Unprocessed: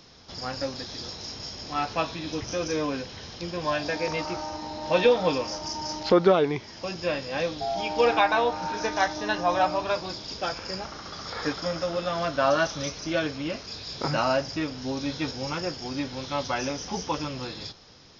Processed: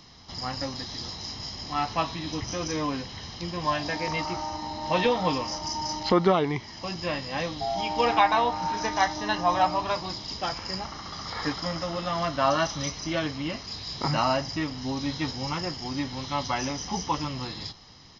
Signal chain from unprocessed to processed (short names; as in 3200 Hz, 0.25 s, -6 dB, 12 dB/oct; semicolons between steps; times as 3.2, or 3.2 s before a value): comb 1 ms, depth 48%